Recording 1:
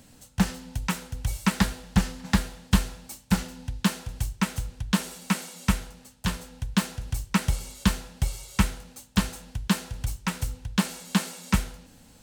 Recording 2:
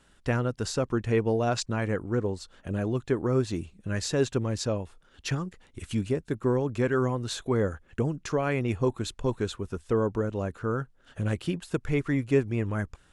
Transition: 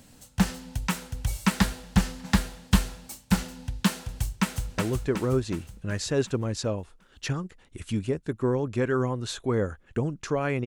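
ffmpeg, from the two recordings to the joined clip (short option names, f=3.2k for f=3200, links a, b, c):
-filter_complex "[0:a]apad=whole_dur=10.66,atrim=end=10.66,atrim=end=4.782[a];[1:a]atrim=start=2.798:end=8.68[b];[a][b]acrossfade=d=0.004:c1=hsin:c2=hsin,asplit=2[c][d];[d]afade=t=in:st=4.32:d=0.01,afade=t=out:st=4.78:d=0.01,aecho=0:1:370|740|1110|1480|1850|2220|2590:0.707946|0.353973|0.176986|0.0884932|0.0442466|0.0221233|0.0110617[e];[c][e]amix=inputs=2:normalize=0"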